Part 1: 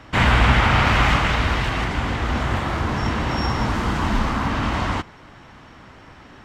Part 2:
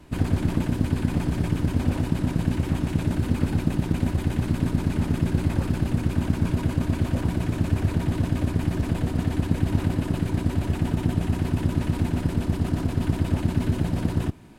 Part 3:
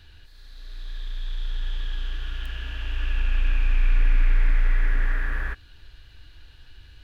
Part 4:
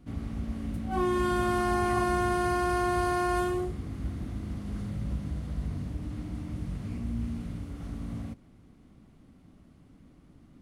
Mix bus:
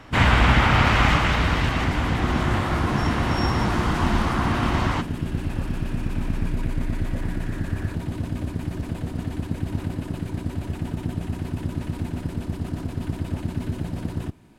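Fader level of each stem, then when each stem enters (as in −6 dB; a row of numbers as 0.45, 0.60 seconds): −1.5, −4.5, −10.0, −7.5 decibels; 0.00, 0.00, 2.40, 1.25 seconds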